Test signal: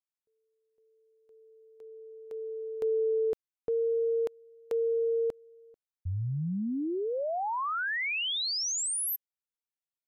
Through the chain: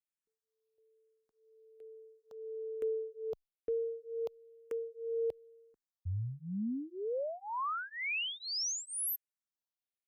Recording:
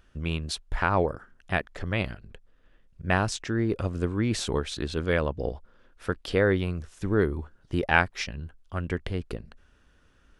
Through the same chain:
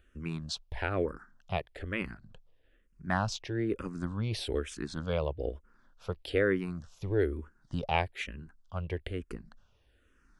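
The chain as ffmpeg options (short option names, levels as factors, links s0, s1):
-filter_complex "[0:a]asplit=2[s0][s1];[s1]afreqshift=-1.1[s2];[s0][s2]amix=inputs=2:normalize=1,volume=0.708"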